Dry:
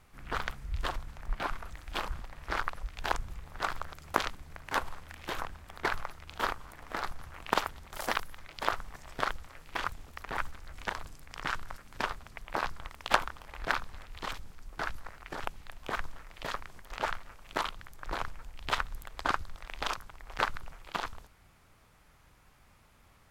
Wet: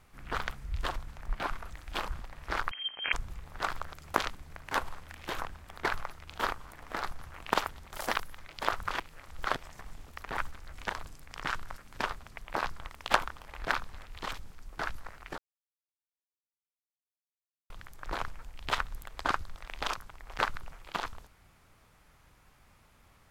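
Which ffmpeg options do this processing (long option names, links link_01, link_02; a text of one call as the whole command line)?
ffmpeg -i in.wav -filter_complex "[0:a]asettb=1/sr,asplit=3[link_01][link_02][link_03];[link_01]atrim=end=2.714[link_04];[link_02]atrim=start=2.71:end=3.13,asetpts=PTS-STARTPTS,afade=type=in:duration=0.004:curve=qsin,afade=type=out:start_time=0.416:duration=0.004:curve=qsin,lowpass=frequency=2700:width_type=q:width=0.5098,lowpass=frequency=2700:width_type=q:width=0.6013,lowpass=frequency=2700:width_type=q:width=0.9,lowpass=frequency=2700:width_type=q:width=2.563,afreqshift=-3200[link_05];[link_03]atrim=start=3.126[link_06];[link_04][link_05]acrossfade=duration=0.004:curve1=hsin:curve2=qsin[link_07];[link_07][link_06]acrossfade=duration=0.004:curve1=qsin:curve2=hsin,asplit=5[link_08][link_09][link_10][link_11][link_12];[link_08]atrim=end=8.822[link_13];[link_09]atrim=start=8.818:end=9.932,asetpts=PTS-STARTPTS,areverse[link_14];[link_10]atrim=start=9.928:end=15.38,asetpts=PTS-STARTPTS,afade=type=out:start_time=5.448:duration=0.004:curve=hsin[link_15];[link_11]atrim=start=15.38:end=17.7,asetpts=PTS-STARTPTS,volume=0[link_16];[link_12]atrim=start=17.7,asetpts=PTS-STARTPTS,afade=type=in:duration=0.004:curve=hsin[link_17];[link_13][link_14]acrossfade=duration=0.004:curve1=hsin:curve2=hsin[link_18];[link_15][link_16][link_17]concat=n=3:v=0:a=1[link_19];[link_18][link_19]acrossfade=duration=0.004:curve1=hsin:curve2=hsin" out.wav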